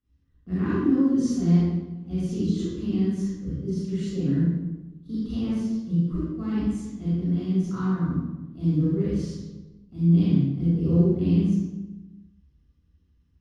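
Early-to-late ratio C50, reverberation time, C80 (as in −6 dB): −4.5 dB, 1.1 s, −1.0 dB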